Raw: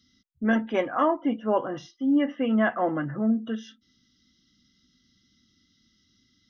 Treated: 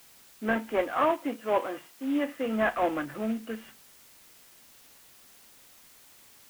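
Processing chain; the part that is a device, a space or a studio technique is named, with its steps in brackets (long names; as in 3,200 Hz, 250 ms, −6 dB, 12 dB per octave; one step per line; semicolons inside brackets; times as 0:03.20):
army field radio (band-pass filter 320–3,000 Hz; variable-slope delta modulation 16 kbit/s; white noise bed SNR 24 dB)
0:00.91–0:02.46: high-pass filter 210 Hz 6 dB per octave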